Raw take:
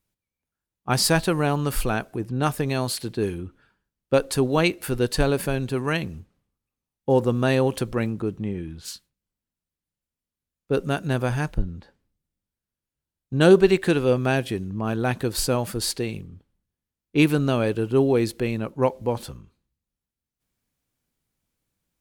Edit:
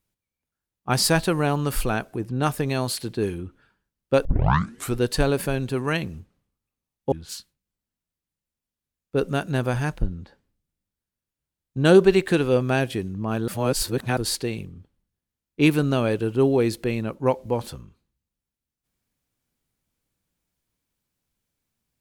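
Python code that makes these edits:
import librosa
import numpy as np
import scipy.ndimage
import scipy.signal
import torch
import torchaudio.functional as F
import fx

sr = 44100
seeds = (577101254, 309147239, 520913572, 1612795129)

y = fx.edit(x, sr, fx.tape_start(start_s=4.25, length_s=0.71),
    fx.cut(start_s=7.12, length_s=1.56),
    fx.reverse_span(start_s=15.04, length_s=0.69), tone=tone)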